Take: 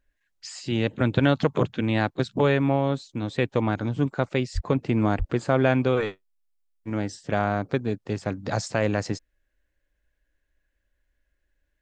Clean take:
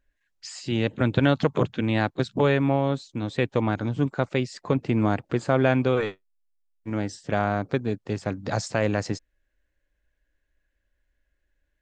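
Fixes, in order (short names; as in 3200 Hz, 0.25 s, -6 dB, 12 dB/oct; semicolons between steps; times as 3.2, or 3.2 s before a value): 4.54–4.66 HPF 140 Hz 24 dB/oct; 5.18–5.3 HPF 140 Hz 24 dB/oct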